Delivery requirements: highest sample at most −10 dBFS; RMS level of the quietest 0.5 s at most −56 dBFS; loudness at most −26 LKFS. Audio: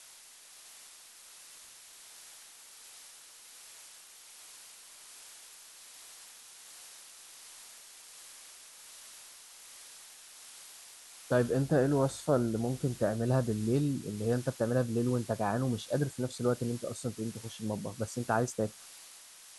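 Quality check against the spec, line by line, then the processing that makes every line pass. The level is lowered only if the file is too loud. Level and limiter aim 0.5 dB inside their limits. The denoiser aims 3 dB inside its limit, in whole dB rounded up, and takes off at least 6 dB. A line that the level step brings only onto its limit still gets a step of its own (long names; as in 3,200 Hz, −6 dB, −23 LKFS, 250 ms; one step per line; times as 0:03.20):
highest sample −14.5 dBFS: in spec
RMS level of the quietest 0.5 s −54 dBFS: out of spec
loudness −32.0 LKFS: in spec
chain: broadband denoise 6 dB, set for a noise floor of −54 dBFS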